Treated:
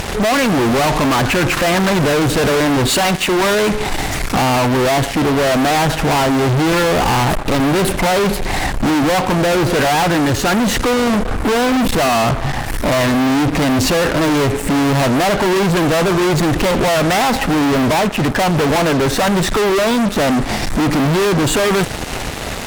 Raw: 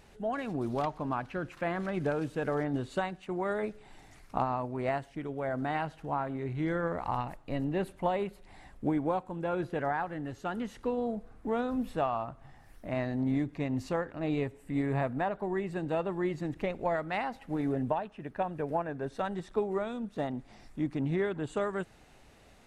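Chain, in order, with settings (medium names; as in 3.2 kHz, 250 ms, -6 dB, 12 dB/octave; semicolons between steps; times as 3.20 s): 2.88–3.69 s: tilt EQ +2 dB/octave; fuzz box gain 55 dB, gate -59 dBFS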